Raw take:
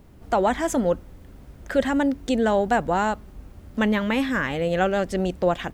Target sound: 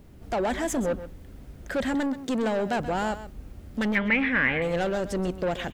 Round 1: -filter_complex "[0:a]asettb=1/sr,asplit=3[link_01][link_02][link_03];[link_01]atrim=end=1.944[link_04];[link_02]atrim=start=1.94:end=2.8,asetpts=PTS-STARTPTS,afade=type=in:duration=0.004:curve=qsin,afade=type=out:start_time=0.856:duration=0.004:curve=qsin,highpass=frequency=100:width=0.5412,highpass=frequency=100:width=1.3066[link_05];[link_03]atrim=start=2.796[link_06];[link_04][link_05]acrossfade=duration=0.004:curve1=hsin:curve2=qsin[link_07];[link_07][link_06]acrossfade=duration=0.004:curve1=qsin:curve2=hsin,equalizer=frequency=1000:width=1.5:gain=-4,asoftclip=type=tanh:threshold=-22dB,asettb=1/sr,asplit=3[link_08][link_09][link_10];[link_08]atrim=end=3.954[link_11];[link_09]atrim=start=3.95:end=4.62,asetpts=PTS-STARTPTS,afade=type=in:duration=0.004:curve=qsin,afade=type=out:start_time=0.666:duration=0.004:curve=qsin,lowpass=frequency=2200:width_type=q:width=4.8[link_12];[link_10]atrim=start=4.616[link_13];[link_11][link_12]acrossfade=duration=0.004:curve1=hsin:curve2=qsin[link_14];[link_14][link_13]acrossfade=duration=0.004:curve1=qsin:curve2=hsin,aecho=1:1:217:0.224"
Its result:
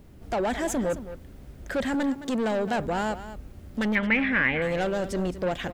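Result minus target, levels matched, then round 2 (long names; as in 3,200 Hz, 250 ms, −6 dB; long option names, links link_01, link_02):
echo 88 ms late
-filter_complex "[0:a]asettb=1/sr,asplit=3[link_01][link_02][link_03];[link_01]atrim=end=1.944[link_04];[link_02]atrim=start=1.94:end=2.8,asetpts=PTS-STARTPTS,afade=type=in:duration=0.004:curve=qsin,afade=type=out:start_time=0.856:duration=0.004:curve=qsin,highpass=frequency=100:width=0.5412,highpass=frequency=100:width=1.3066[link_05];[link_03]atrim=start=2.796[link_06];[link_04][link_05]acrossfade=duration=0.004:curve1=hsin:curve2=qsin[link_07];[link_07][link_06]acrossfade=duration=0.004:curve1=qsin:curve2=hsin,equalizer=frequency=1000:width=1.5:gain=-4,asoftclip=type=tanh:threshold=-22dB,asettb=1/sr,asplit=3[link_08][link_09][link_10];[link_08]atrim=end=3.954[link_11];[link_09]atrim=start=3.95:end=4.62,asetpts=PTS-STARTPTS,afade=type=in:duration=0.004:curve=qsin,afade=type=out:start_time=0.666:duration=0.004:curve=qsin,lowpass=frequency=2200:width_type=q:width=4.8[link_12];[link_10]atrim=start=4.616[link_13];[link_11][link_12]acrossfade=duration=0.004:curve1=hsin:curve2=qsin[link_14];[link_14][link_13]acrossfade=duration=0.004:curve1=qsin:curve2=hsin,aecho=1:1:129:0.224"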